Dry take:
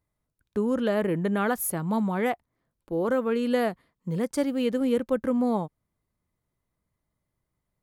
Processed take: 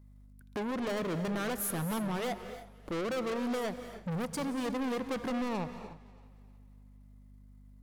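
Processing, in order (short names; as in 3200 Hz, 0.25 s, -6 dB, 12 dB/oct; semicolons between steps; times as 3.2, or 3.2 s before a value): transient shaper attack +6 dB, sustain -6 dB; in parallel at +2 dB: level quantiser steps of 12 dB; on the sum: overloaded stage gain 22.5 dB; hum 50 Hz, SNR 27 dB; soft clip -32.5 dBFS, distortion -11 dB; on a send: thinning echo 0.315 s, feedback 38%, level -21 dB; on the sum: non-linear reverb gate 0.32 s rising, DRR 10 dB; warbling echo 0.18 s, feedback 63%, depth 158 cents, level -23.5 dB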